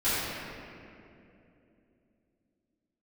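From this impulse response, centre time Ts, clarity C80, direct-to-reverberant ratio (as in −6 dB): 171 ms, −2.0 dB, −16.0 dB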